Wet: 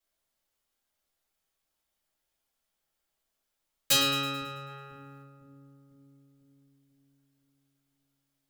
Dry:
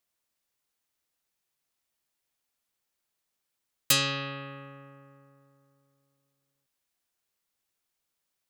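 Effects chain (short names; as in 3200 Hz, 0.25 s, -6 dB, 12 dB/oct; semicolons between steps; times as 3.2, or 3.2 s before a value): 4.67–5.21 spectral limiter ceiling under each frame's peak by 13 dB; on a send: split-band echo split 320 Hz, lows 0.498 s, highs 0.109 s, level -11 dB; on the sum: shoebox room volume 120 m³, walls furnished, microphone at 4 m; gain -8.5 dB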